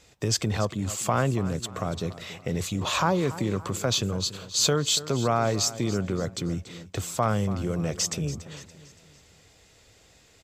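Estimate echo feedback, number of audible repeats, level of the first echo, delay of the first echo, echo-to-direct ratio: 46%, 3, -15.5 dB, 0.285 s, -14.5 dB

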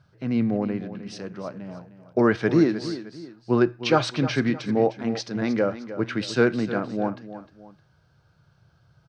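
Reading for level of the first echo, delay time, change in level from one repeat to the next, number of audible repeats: -13.0 dB, 0.307 s, -8.5 dB, 2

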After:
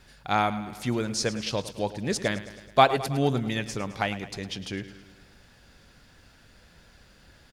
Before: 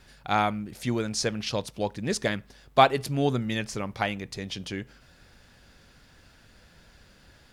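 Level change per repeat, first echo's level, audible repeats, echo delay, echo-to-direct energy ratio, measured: -4.5 dB, -14.5 dB, 5, 0.107 s, -12.5 dB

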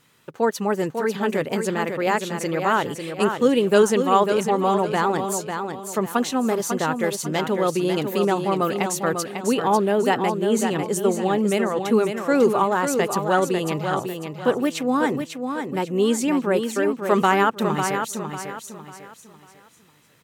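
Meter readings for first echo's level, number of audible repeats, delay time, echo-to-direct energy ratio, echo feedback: -6.5 dB, 4, 0.547 s, -6.0 dB, 34%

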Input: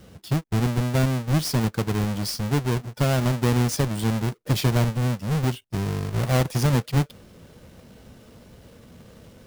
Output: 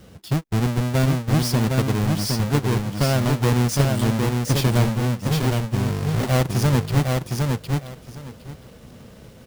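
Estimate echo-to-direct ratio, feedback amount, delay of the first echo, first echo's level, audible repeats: -3.5 dB, 18%, 0.76 s, -3.5 dB, 3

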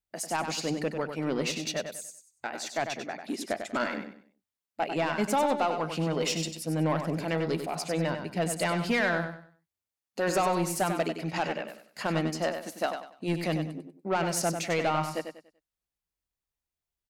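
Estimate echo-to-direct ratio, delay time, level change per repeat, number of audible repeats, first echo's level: -7.0 dB, 96 ms, -10.5 dB, 3, -7.5 dB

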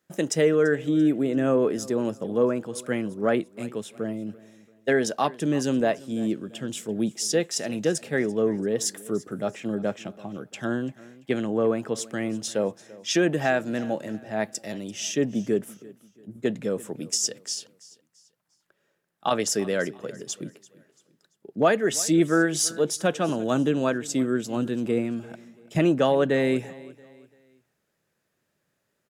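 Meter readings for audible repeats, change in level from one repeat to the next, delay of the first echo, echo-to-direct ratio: 2, -8.5 dB, 0.339 s, -20.0 dB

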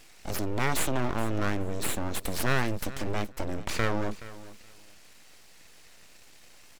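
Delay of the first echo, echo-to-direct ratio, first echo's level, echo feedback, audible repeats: 0.423 s, -17.0 dB, -17.0 dB, 17%, 2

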